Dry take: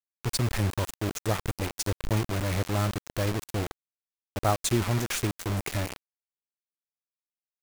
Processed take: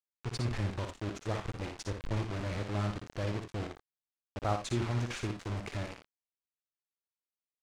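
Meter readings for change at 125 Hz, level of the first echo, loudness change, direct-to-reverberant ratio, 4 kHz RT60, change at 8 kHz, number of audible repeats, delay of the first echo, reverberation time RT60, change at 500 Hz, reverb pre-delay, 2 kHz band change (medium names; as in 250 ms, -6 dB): -6.0 dB, -6.5 dB, -7.0 dB, no reverb, no reverb, -14.5 dB, 1, 58 ms, no reverb, -6.5 dB, no reverb, -7.5 dB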